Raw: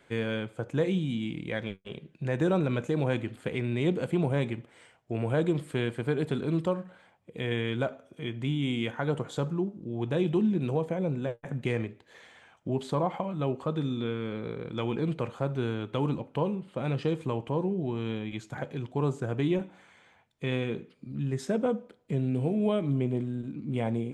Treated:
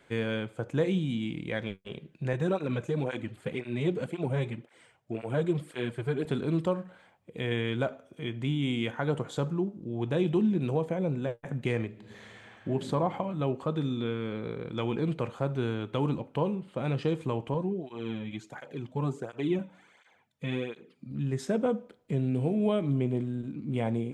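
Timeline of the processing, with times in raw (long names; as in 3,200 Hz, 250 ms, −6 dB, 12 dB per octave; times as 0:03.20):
0:02.33–0:06.25: through-zero flanger with one copy inverted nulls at 1.9 Hz, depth 4.6 ms
0:11.88–0:12.69: thrown reverb, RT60 2.6 s, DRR −1 dB
0:17.54–0:21.11: through-zero flanger with one copy inverted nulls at 1.4 Hz, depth 3 ms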